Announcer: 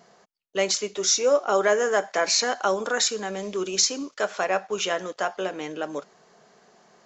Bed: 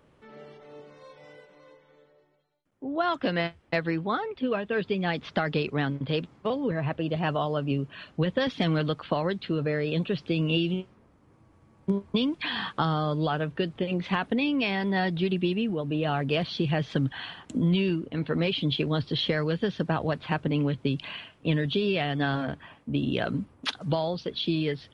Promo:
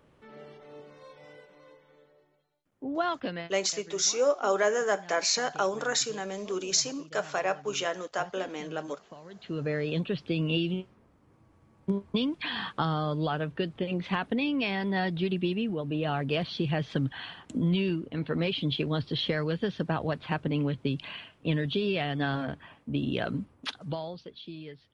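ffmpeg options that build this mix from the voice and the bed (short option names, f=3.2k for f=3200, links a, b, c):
-filter_complex "[0:a]adelay=2950,volume=-4.5dB[a];[1:a]volume=17.5dB,afade=t=out:st=2.93:d=0.64:silence=0.1,afade=t=in:st=9.29:d=0.41:silence=0.11885,afade=t=out:st=23.32:d=1.1:silence=0.223872[b];[a][b]amix=inputs=2:normalize=0"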